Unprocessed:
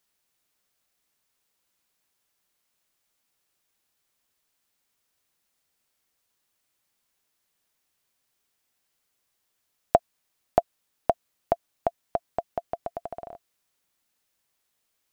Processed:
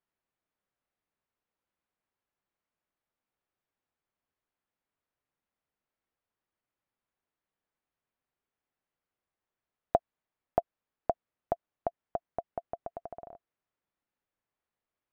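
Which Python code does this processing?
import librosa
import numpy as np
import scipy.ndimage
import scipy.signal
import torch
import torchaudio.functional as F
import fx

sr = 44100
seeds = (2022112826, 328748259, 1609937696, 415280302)

y = scipy.signal.sosfilt(scipy.signal.bessel(2, 1500.0, 'lowpass', norm='mag', fs=sr, output='sos'), x)
y = y * 10.0 ** (-6.0 / 20.0)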